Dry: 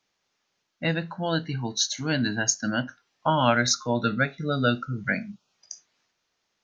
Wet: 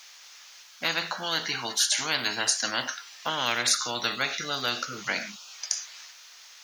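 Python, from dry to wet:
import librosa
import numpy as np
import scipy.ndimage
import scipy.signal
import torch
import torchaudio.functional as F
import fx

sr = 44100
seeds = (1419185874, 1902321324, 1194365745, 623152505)

y = scipy.signal.sosfilt(scipy.signal.butter(2, 1100.0, 'highpass', fs=sr, output='sos'), x)
y = fx.high_shelf(y, sr, hz=4000.0, db=8.0)
y = fx.spectral_comp(y, sr, ratio=4.0)
y = y * librosa.db_to_amplitude(-6.5)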